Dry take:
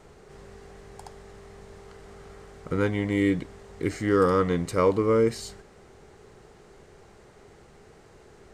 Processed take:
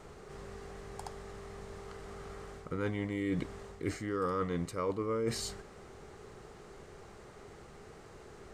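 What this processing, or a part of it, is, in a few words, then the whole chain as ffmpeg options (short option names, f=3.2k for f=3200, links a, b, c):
compression on the reversed sound: -af "areverse,acompressor=threshold=-31dB:ratio=8,areverse,equalizer=f=1.2k:t=o:w=0.26:g=4.5"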